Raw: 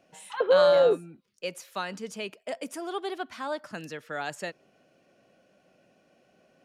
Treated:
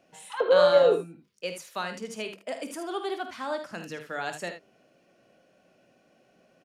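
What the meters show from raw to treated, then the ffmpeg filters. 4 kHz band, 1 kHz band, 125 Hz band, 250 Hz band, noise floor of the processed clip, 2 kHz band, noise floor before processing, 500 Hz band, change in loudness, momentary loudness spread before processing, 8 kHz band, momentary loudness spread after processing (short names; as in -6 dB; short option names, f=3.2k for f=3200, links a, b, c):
+1.0 dB, +1.0 dB, +0.5 dB, +0.5 dB, -65 dBFS, +1.0 dB, -66 dBFS, +0.5 dB, +0.5 dB, 18 LU, +1.0 dB, 19 LU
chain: -af "bandreject=f=50:t=h:w=6,bandreject=f=100:t=h:w=6,bandreject=f=150:t=h:w=6,bandreject=f=200:t=h:w=6,aecho=1:1:23|51|77:0.168|0.282|0.316"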